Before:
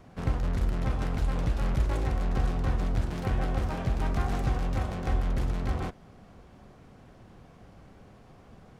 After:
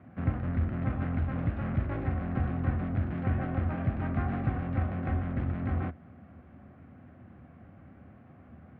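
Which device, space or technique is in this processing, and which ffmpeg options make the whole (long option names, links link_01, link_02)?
bass cabinet: -af "highpass=frequency=77:width=0.5412,highpass=frequency=77:width=1.3066,equalizer=frequency=79:width_type=q:width=4:gain=9,equalizer=frequency=250:width_type=q:width=4:gain=6,equalizer=frequency=440:width_type=q:width=4:gain=-9,equalizer=frequency=940:width_type=q:width=4:gain=-8,lowpass=frequency=2200:width=0.5412,lowpass=frequency=2200:width=1.3066"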